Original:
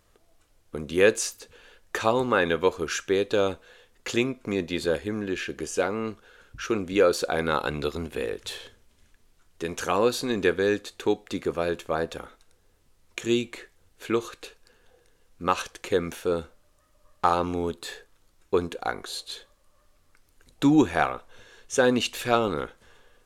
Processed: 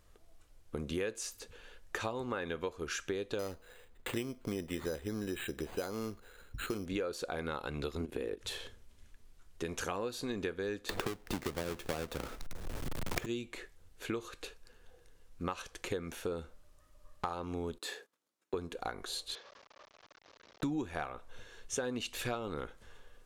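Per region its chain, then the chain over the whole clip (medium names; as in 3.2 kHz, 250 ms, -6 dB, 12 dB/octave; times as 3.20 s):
3.39–6.86 s: distance through air 150 m + careless resampling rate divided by 8×, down none, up hold
8.00–8.41 s: peaking EQ 330 Hz +8.5 dB 1.3 oct + level held to a coarse grid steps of 14 dB
10.89–13.26 s: square wave that keeps the level + three bands compressed up and down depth 100%
17.78–18.54 s: gate -56 dBFS, range -15 dB + high-pass 210 Hz 24 dB/octave
19.35–20.63 s: one-bit delta coder 32 kbps, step -42.5 dBFS + high-pass 560 Hz + tilt EQ -2.5 dB/octave
whole clip: compression 6:1, threshold -31 dBFS; bass shelf 86 Hz +8.5 dB; trim -3.5 dB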